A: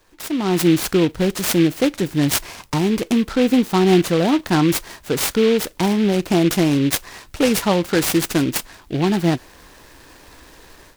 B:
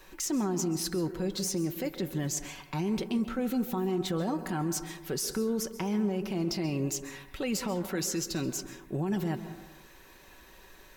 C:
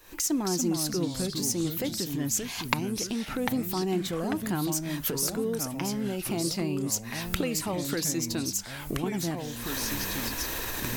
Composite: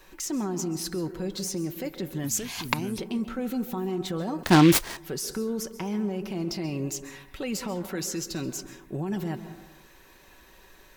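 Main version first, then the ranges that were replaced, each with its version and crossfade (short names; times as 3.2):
B
2.24–2.98 from C
4.43–4.97 from A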